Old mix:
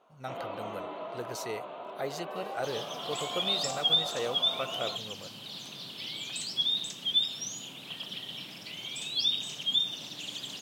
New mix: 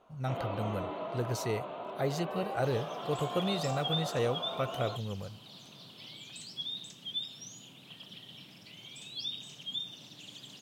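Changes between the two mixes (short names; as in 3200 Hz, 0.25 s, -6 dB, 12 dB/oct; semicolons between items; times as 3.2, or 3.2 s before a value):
speech: add low shelf 160 Hz +10 dB; second sound -10.0 dB; master: add low shelf 190 Hz +11 dB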